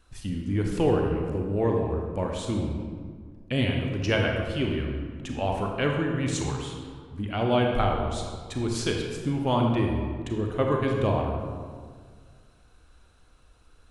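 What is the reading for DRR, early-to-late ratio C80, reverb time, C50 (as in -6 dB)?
1.0 dB, 4.0 dB, 1.8 s, 2.5 dB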